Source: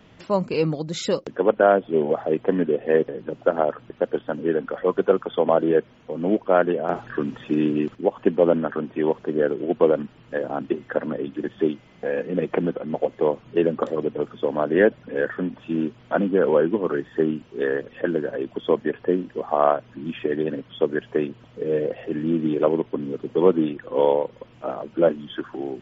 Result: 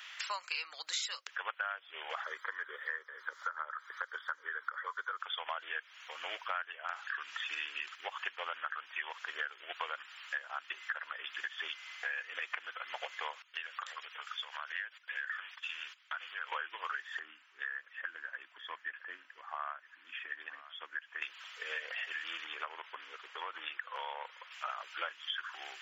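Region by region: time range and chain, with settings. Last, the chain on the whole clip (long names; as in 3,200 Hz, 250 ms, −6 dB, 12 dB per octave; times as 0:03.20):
0:02.24–0:05.20: high-shelf EQ 6,700 Hz −5.5 dB + phaser with its sweep stopped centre 720 Hz, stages 6 + multiband upward and downward compressor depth 70%
0:13.42–0:16.52: high-pass filter 1,100 Hz 6 dB per octave + noise gate −52 dBFS, range −16 dB + downward compressor 4 to 1, threshold −35 dBFS
0:17.19–0:21.22: drawn EQ curve 290 Hz 0 dB, 420 Hz −13 dB, 1,700 Hz −11 dB, 3,600 Hz −19 dB + single-tap delay 963 ms −22.5 dB
0:22.44–0:24.51: high-shelf EQ 2,600 Hz −10.5 dB + downward compressor, threshold −20 dBFS
whole clip: high-pass filter 1,400 Hz 24 dB per octave; downward compressor 6 to 1, threshold −47 dBFS; level +11 dB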